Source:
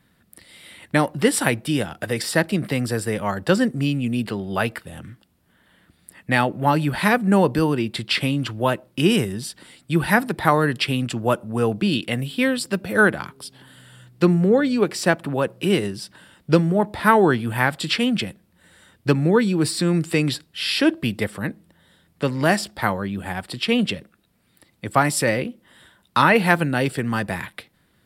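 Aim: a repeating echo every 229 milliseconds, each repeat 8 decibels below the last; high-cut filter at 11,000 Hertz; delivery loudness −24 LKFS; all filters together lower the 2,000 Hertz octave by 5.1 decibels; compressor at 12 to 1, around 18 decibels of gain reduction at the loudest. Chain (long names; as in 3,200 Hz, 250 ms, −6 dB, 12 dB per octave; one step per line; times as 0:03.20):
low-pass filter 11,000 Hz
parametric band 2,000 Hz −7 dB
downward compressor 12 to 1, threshold −30 dBFS
repeating echo 229 ms, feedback 40%, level −8 dB
level +10.5 dB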